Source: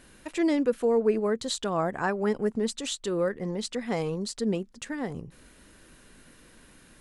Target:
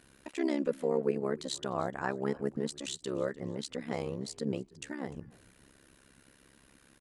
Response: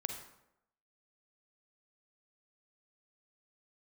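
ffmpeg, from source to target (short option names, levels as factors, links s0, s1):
-filter_complex "[0:a]highpass=42,tremolo=f=68:d=0.947,asplit=3[s0][s1][s2];[s1]adelay=300,afreqshift=-58,volume=0.0708[s3];[s2]adelay=600,afreqshift=-116,volume=0.0248[s4];[s0][s3][s4]amix=inputs=3:normalize=0,volume=0.75"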